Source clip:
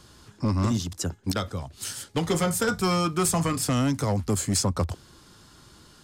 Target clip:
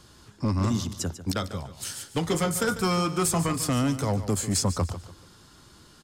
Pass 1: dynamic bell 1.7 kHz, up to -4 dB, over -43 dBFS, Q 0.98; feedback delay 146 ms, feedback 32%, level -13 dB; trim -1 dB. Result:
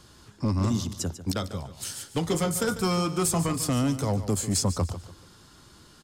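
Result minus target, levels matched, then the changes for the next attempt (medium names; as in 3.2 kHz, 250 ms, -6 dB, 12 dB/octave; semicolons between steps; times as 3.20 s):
2 kHz band -3.0 dB
remove: dynamic bell 1.7 kHz, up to -4 dB, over -43 dBFS, Q 0.98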